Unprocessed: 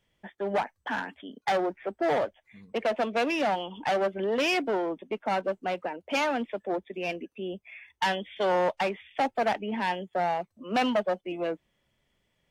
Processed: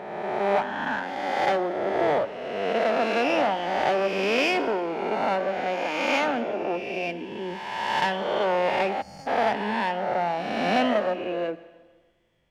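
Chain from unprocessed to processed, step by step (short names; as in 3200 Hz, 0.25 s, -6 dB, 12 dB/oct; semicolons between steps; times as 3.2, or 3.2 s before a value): spectral swells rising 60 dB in 1.79 s; high shelf 5000 Hz -8 dB; reverb RT60 1.4 s, pre-delay 40 ms, DRR 14 dB; spectral gain 9.02–9.27, 200–4300 Hz -23 dB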